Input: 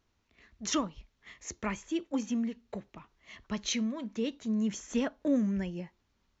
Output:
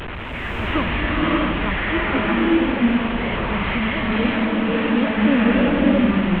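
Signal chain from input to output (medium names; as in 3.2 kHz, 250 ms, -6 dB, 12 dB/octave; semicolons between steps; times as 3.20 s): one-bit delta coder 16 kbps, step -30.5 dBFS; swelling reverb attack 630 ms, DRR -6.5 dB; trim +7 dB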